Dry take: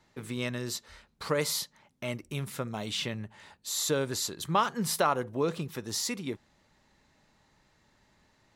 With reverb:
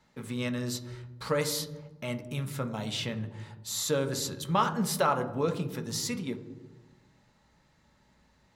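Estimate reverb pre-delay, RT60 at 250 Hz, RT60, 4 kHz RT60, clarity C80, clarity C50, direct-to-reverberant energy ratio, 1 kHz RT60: 3 ms, 1.5 s, 1.1 s, 0.75 s, 14.5 dB, 12.5 dB, 5.5 dB, 1.0 s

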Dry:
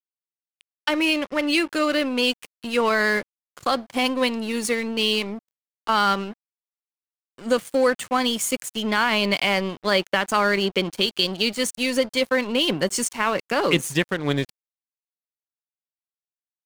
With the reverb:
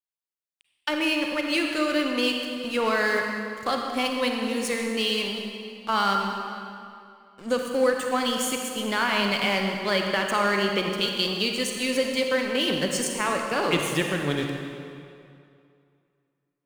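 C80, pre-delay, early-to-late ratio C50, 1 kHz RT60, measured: 3.5 dB, 35 ms, 2.5 dB, 2.4 s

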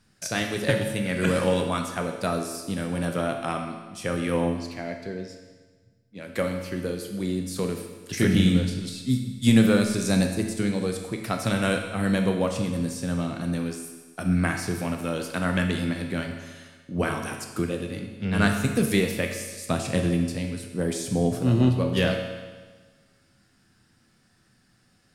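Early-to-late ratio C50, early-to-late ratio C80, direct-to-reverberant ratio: 5.5 dB, 7.5 dB, 3.0 dB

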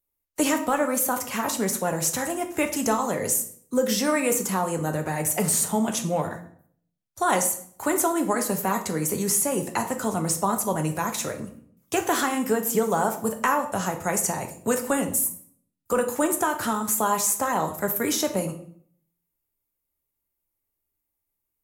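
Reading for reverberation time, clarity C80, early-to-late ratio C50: 0.60 s, 14.5 dB, 11.0 dB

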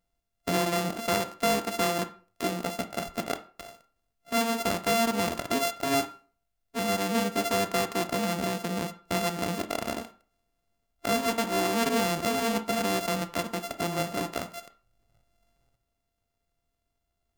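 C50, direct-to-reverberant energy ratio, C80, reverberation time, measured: 14.5 dB, 9.5 dB, 19.5 dB, 0.40 s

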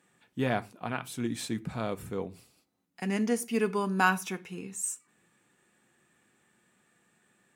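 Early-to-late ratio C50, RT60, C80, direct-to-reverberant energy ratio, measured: 22.0 dB, no single decay rate, 28.0 dB, 11.5 dB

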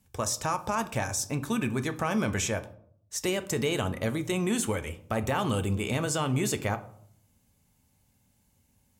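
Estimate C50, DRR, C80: 15.5 dB, 9.0 dB, 19.5 dB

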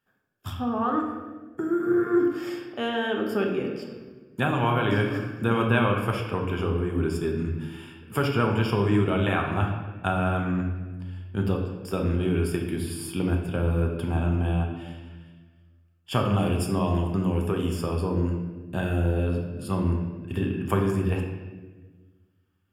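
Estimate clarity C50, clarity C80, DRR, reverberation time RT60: 4.5 dB, 6.5 dB, 1.0 dB, 1.3 s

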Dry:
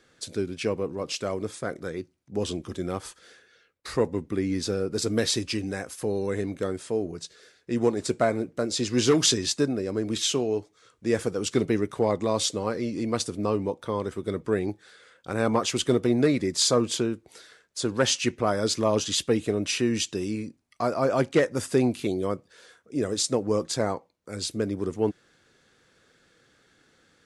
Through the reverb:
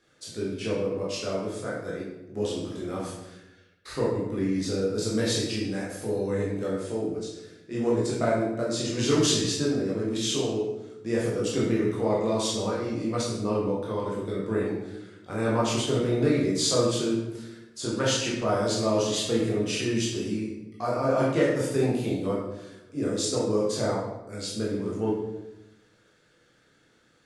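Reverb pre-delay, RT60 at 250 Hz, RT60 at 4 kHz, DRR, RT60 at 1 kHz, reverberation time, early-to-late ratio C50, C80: 14 ms, 1.3 s, 0.65 s, -6.0 dB, 0.90 s, 1.0 s, 1.0 dB, 4.5 dB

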